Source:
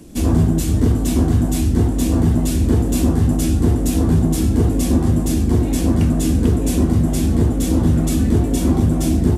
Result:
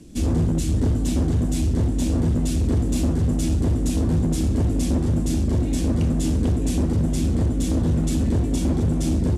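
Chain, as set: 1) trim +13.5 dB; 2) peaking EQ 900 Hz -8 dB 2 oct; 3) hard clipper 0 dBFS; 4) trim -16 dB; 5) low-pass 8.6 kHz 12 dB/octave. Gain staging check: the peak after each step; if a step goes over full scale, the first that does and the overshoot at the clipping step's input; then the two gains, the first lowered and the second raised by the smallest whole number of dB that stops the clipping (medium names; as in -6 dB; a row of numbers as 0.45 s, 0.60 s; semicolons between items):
+10.0 dBFS, +9.5 dBFS, 0.0 dBFS, -16.0 dBFS, -15.5 dBFS; step 1, 9.5 dB; step 1 +3.5 dB, step 4 -6 dB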